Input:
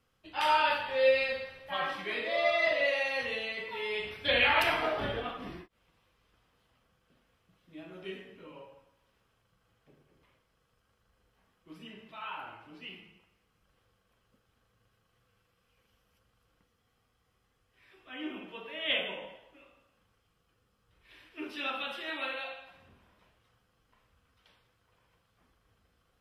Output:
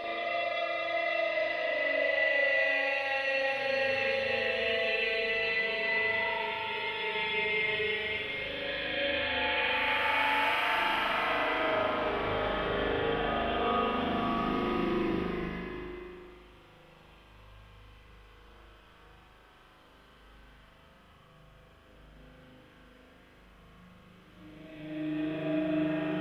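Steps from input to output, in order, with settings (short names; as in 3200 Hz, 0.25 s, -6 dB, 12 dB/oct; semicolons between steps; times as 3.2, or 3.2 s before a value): reverse; compressor 6:1, threshold -42 dBFS, peak gain reduction 20 dB; reverse; Paulstretch 4.7×, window 0.50 s, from 2.38; spring tank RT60 1.5 s, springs 39 ms, chirp 50 ms, DRR -7 dB; gain +6.5 dB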